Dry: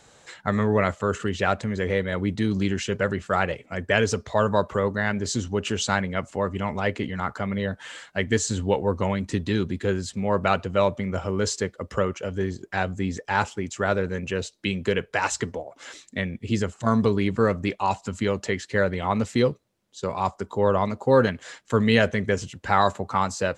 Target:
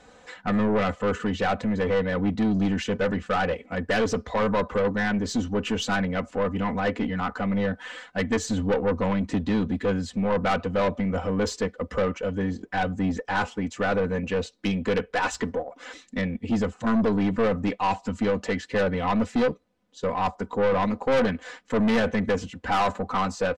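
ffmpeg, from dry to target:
ffmpeg -i in.wav -af "aemphasis=mode=reproduction:type=75kf,aecho=1:1:4:0.75,aeval=exprs='(tanh(11.2*val(0)+0.2)-tanh(0.2))/11.2':channel_layout=same,volume=2.5dB" out.wav

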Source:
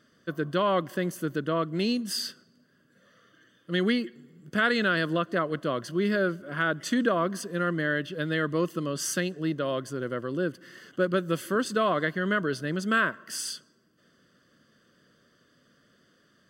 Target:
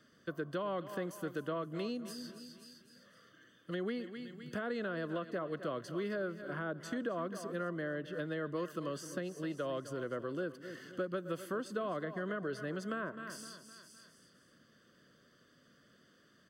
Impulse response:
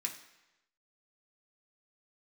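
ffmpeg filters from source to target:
-filter_complex "[0:a]aecho=1:1:256|512|768|1024:0.158|0.065|0.0266|0.0109,acrossover=split=610[link_01][link_02];[link_02]alimiter=limit=-23dB:level=0:latency=1:release=230[link_03];[link_01][link_03]amix=inputs=2:normalize=0,acrossover=split=460|1200[link_04][link_05][link_06];[link_04]acompressor=threshold=-40dB:ratio=4[link_07];[link_05]acompressor=threshold=-36dB:ratio=4[link_08];[link_06]acompressor=threshold=-49dB:ratio=4[link_09];[link_07][link_08][link_09]amix=inputs=3:normalize=0,volume=-2.5dB"

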